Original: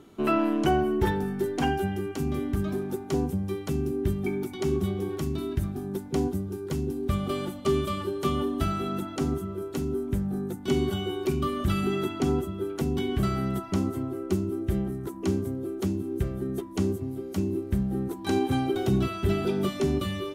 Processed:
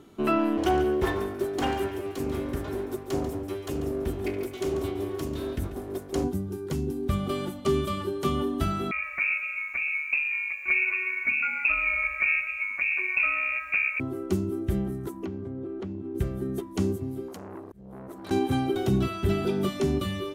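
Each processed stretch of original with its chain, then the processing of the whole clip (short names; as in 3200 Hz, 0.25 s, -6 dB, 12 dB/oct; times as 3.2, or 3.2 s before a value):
0.57–6.24 minimum comb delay 2.8 ms + HPF 48 Hz + echo 0.141 s -11.5 dB
8.91–14 inverted band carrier 2600 Hz + lo-fi delay 0.123 s, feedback 35%, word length 9-bit, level -14 dB
15.25–16.15 LPF 2500 Hz + compressor, threshold -31 dBFS
17.28–18.31 compressor 3:1, threshold -35 dBFS + auto swell 0.276 s + core saturation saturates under 970 Hz
whole clip: dry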